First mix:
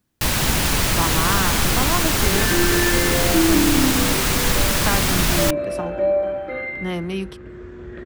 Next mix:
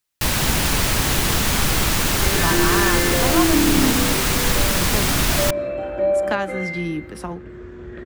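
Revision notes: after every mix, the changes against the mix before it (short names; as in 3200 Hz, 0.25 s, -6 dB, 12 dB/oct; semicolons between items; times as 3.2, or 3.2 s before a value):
speech: entry +1.45 s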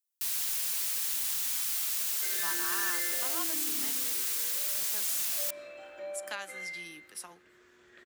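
first sound -10.0 dB; master: add differentiator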